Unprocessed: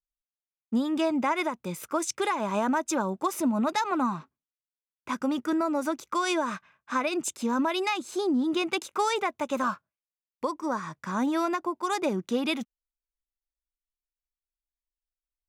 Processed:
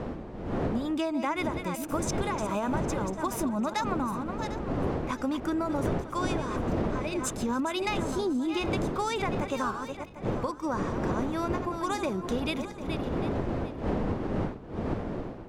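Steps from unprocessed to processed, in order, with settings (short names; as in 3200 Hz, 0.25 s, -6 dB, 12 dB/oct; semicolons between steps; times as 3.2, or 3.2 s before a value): regenerating reverse delay 0.374 s, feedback 42%, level -10 dB; wind noise 420 Hz -27 dBFS; compressor 16:1, threshold -25 dBFS, peak gain reduction 15 dB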